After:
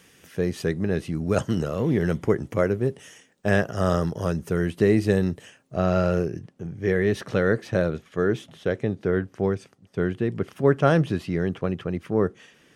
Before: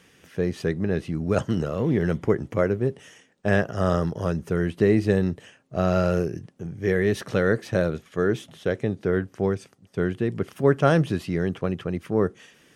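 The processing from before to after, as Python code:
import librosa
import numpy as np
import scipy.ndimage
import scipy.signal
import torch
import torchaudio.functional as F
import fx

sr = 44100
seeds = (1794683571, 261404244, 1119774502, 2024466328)

y = fx.high_shelf(x, sr, hz=6700.0, db=fx.steps((0.0, 8.5), (5.75, -6.0)))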